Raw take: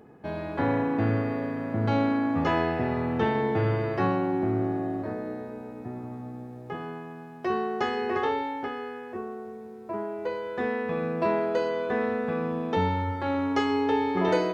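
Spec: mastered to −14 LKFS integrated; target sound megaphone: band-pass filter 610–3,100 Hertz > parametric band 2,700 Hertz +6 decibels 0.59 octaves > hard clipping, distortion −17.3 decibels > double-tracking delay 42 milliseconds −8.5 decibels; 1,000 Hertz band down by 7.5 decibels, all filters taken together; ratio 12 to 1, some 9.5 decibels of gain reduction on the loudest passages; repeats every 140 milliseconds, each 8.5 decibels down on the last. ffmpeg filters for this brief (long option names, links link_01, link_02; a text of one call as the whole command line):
ffmpeg -i in.wav -filter_complex "[0:a]equalizer=frequency=1000:width_type=o:gain=-8.5,acompressor=threshold=-31dB:ratio=12,highpass=610,lowpass=3100,equalizer=frequency=2700:width_type=o:width=0.59:gain=6,aecho=1:1:140|280|420|560:0.376|0.143|0.0543|0.0206,asoftclip=type=hard:threshold=-35.5dB,asplit=2[link_01][link_02];[link_02]adelay=42,volume=-8.5dB[link_03];[link_01][link_03]amix=inputs=2:normalize=0,volume=28dB" out.wav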